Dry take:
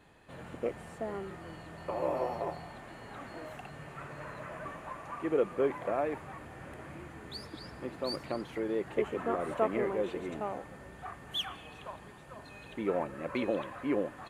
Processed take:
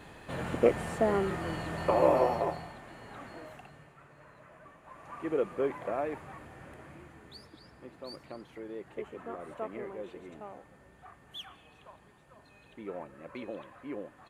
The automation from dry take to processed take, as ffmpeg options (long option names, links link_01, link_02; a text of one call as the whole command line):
ffmpeg -i in.wav -af "volume=21dB,afade=type=out:start_time=1.8:duration=0.97:silence=0.266073,afade=type=out:start_time=3.27:duration=0.69:silence=0.281838,afade=type=in:start_time=4.82:duration=0.45:silence=0.298538,afade=type=out:start_time=6.34:duration=1.24:silence=0.421697" out.wav